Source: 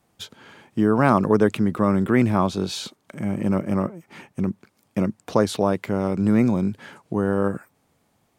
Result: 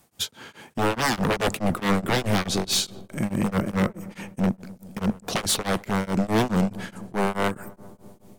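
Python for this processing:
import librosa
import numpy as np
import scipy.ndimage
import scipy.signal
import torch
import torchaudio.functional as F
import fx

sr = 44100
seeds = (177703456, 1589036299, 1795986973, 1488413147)

y = fx.high_shelf(x, sr, hz=4800.0, db=10.0)
y = 10.0 ** (-19.5 / 20.0) * (np.abs((y / 10.0 ** (-19.5 / 20.0) + 3.0) % 4.0 - 2.0) - 1.0)
y = fx.echo_filtered(y, sr, ms=128, feedback_pct=84, hz=1300.0, wet_db=-18.5)
y = y * np.abs(np.cos(np.pi * 4.7 * np.arange(len(y)) / sr))
y = F.gain(torch.from_numpy(y), 5.0).numpy()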